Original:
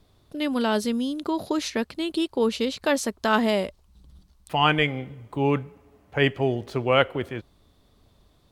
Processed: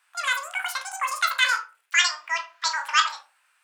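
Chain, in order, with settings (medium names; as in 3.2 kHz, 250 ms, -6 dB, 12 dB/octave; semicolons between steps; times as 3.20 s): high-pass 550 Hz 24 dB/octave; treble shelf 2.2 kHz -9.5 dB; reverberation RT60 0.65 s, pre-delay 38 ms, DRR 4.5 dB; speed mistake 33 rpm record played at 78 rpm; trim +4 dB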